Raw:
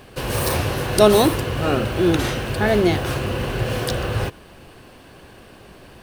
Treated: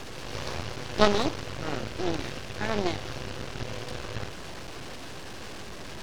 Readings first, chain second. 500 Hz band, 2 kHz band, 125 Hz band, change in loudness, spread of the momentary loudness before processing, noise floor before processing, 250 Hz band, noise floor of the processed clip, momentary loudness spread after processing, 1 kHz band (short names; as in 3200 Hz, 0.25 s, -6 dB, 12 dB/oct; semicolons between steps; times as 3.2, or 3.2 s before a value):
-12.0 dB, -8.5 dB, -14.0 dB, -12.0 dB, 10 LU, -45 dBFS, -12.0 dB, -40 dBFS, 16 LU, -8.0 dB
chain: delta modulation 32 kbps, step -20 dBFS; added harmonics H 3 -13 dB, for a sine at -1 dBFS; half-wave rectifier